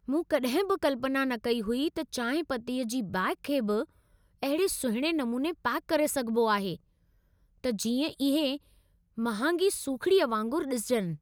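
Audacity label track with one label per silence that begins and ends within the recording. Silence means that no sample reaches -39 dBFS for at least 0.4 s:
3.840000	4.430000	silence
6.760000	7.640000	silence
8.570000	9.180000	silence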